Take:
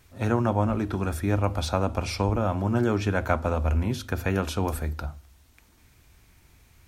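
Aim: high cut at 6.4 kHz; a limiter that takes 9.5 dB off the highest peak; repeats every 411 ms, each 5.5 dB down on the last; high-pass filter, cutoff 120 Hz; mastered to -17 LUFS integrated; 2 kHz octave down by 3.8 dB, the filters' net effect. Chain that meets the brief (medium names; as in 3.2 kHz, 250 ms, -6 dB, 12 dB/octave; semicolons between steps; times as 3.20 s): high-pass 120 Hz; low-pass 6.4 kHz; peaking EQ 2 kHz -5.5 dB; peak limiter -20.5 dBFS; feedback delay 411 ms, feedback 53%, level -5.5 dB; trim +14 dB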